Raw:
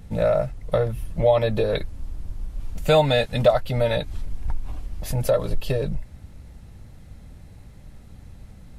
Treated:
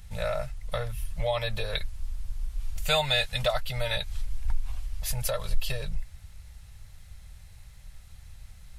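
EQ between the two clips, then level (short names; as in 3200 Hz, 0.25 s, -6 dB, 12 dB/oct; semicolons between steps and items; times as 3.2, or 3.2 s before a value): passive tone stack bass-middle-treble 10-0-10; +4.0 dB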